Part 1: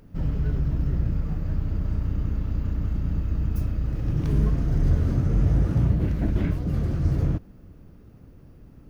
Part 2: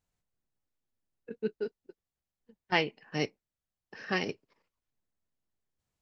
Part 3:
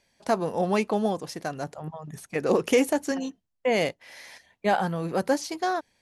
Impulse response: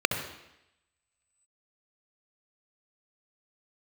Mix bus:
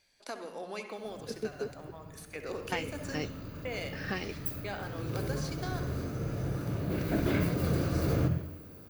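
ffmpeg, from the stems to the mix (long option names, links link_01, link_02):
-filter_complex "[0:a]aemphasis=mode=production:type=bsi,adelay=900,volume=-1.5dB,afade=type=in:start_time=2.43:duration=0.6:silence=0.281838,afade=type=in:start_time=6.71:duration=0.49:silence=0.398107,asplit=2[link_01][link_02];[link_02]volume=-9.5dB[link_03];[1:a]volume=3dB[link_04];[2:a]highpass=frequency=260:width=0.5412,highpass=frequency=260:width=1.3066,equalizer=frequency=550:width_type=o:width=2.7:gain=-11,acompressor=threshold=-45dB:ratio=2,volume=-4dB,asplit=2[link_05][link_06];[link_06]volume=-9.5dB[link_07];[link_04][link_05]amix=inputs=2:normalize=0,acompressor=threshold=-32dB:ratio=6,volume=0dB[link_08];[3:a]atrim=start_sample=2205[link_09];[link_03][link_07]amix=inputs=2:normalize=0[link_10];[link_10][link_09]afir=irnorm=-1:irlink=0[link_11];[link_01][link_08][link_11]amix=inputs=3:normalize=0"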